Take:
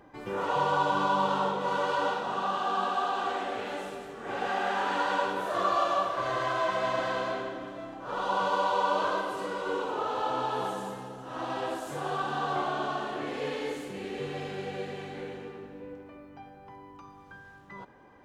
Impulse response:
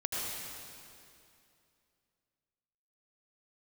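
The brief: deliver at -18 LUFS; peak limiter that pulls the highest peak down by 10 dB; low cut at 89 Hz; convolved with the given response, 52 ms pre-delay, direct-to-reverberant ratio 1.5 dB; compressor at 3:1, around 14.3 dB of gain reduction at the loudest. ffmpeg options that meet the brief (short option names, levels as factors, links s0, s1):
-filter_complex "[0:a]highpass=89,acompressor=threshold=0.00708:ratio=3,alimiter=level_in=5.62:limit=0.0631:level=0:latency=1,volume=0.178,asplit=2[s0][s1];[1:a]atrim=start_sample=2205,adelay=52[s2];[s1][s2]afir=irnorm=-1:irlink=0,volume=0.447[s3];[s0][s3]amix=inputs=2:normalize=0,volume=22.4"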